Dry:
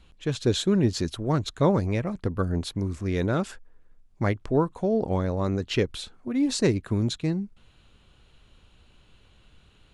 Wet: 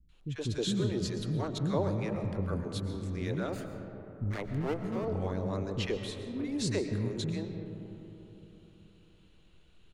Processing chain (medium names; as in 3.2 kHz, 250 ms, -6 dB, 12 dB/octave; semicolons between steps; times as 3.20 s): 3.43–4.96 s: comb filter that takes the minimum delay 0.45 ms; three bands offset in time lows, highs, mids 90/120 ms, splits 280/1100 Hz; reverberation RT60 3.5 s, pre-delay 80 ms, DRR 7 dB; trim -7 dB